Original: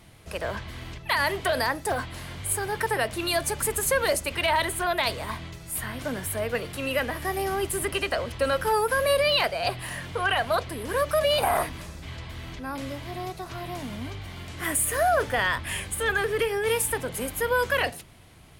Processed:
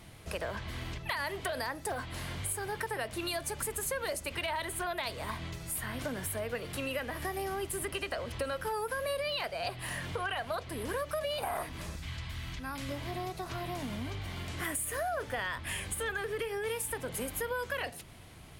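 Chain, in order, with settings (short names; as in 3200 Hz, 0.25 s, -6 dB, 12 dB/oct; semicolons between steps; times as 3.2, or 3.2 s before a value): 11.96–12.89 bell 460 Hz -11 dB 1.9 oct; compressor 4:1, threshold -34 dBFS, peak gain reduction 12.5 dB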